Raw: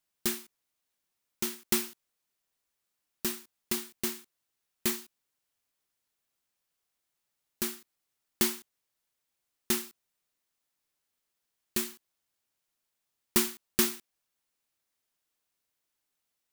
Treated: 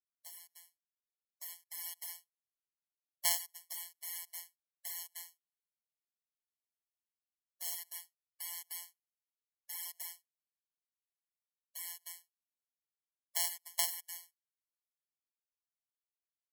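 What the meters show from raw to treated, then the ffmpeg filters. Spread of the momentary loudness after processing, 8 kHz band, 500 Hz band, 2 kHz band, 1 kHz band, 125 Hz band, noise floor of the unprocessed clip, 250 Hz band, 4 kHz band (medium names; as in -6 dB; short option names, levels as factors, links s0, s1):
18 LU, -5.0 dB, -19.5 dB, -9.5 dB, -7.0 dB, under -40 dB, -83 dBFS, under -40 dB, -6.5 dB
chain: -af "aresample=32000,aresample=44100,afftfilt=real='hypot(re,im)*cos(PI*b)':imag='0':win_size=1024:overlap=0.75,lowshelf=f=350:g=-4,aecho=1:1:305:0.0841,agate=range=0.0224:threshold=0.00126:ratio=3:detection=peak,areverse,acompressor=threshold=0.00447:ratio=8,areverse,tremolo=f=0.88:d=0.6,highshelf=f=7700:g=11,aeval=exprs='0.0596*(cos(1*acos(clip(val(0)/0.0596,-1,1)))-cos(1*PI/2))+0.0266*(cos(3*acos(clip(val(0)/0.0596,-1,1)))-cos(3*PI/2))+0.00841*(cos(4*acos(clip(val(0)/0.0596,-1,1)))-cos(4*PI/2))+0.00133*(cos(6*acos(clip(val(0)/0.0596,-1,1)))-cos(6*PI/2))+0.00237*(cos(7*acos(clip(val(0)/0.0596,-1,1)))-cos(7*PI/2))':c=same,dynaudnorm=f=300:g=9:m=3.16,afftfilt=real='re*eq(mod(floor(b*sr/1024/570),2),1)':imag='im*eq(mod(floor(b*sr/1024/570),2),1)':win_size=1024:overlap=0.75,volume=2.99"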